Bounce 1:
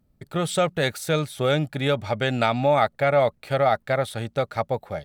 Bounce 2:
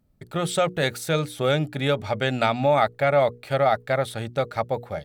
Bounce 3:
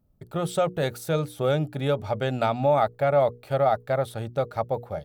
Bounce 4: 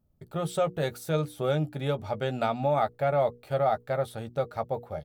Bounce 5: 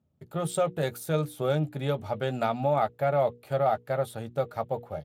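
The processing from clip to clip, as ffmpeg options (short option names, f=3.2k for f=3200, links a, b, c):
-af "bandreject=f=60:t=h:w=6,bandreject=f=120:t=h:w=6,bandreject=f=180:t=h:w=6,bandreject=f=240:t=h:w=6,bandreject=f=300:t=h:w=6,bandreject=f=360:t=h:w=6,bandreject=f=420:t=h:w=6,bandreject=f=480:t=h:w=6"
-af "equalizer=f=250:t=o:w=1:g=-3,equalizer=f=2k:t=o:w=1:g=-9,equalizer=f=4k:t=o:w=1:g=-5,equalizer=f=8k:t=o:w=1:g=-6"
-filter_complex "[0:a]asplit=2[a][b];[b]adelay=13,volume=-9.5dB[c];[a][c]amix=inputs=2:normalize=0,volume=-4dB"
-af "aexciter=amount=2.5:drive=5.1:freq=7.5k" -ar 32000 -c:a libspeex -b:a 36k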